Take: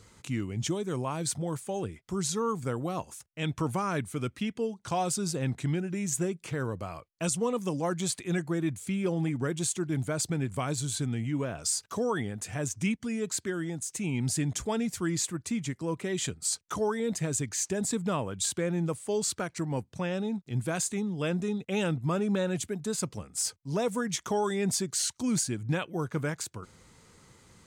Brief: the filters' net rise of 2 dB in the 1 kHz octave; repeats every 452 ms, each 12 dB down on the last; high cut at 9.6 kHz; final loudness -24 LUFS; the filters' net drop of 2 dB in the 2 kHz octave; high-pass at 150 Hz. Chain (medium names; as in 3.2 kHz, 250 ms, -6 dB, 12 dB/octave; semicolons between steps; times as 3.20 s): high-pass 150 Hz; low-pass 9.6 kHz; peaking EQ 1 kHz +3.5 dB; peaking EQ 2 kHz -4 dB; feedback delay 452 ms, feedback 25%, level -12 dB; trim +7.5 dB